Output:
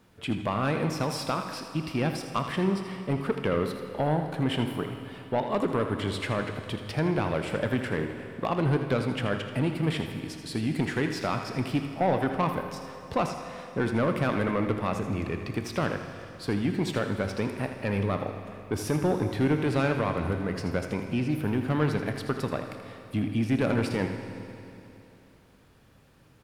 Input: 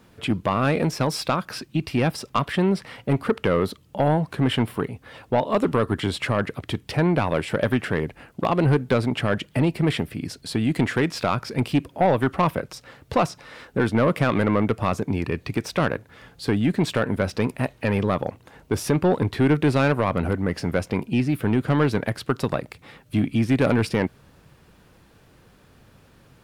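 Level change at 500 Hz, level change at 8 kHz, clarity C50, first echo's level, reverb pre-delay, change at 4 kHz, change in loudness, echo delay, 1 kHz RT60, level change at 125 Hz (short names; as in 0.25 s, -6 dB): -5.5 dB, -5.5 dB, 5.5 dB, -10.0 dB, 20 ms, -5.5 dB, -5.5 dB, 81 ms, 3.0 s, -5.5 dB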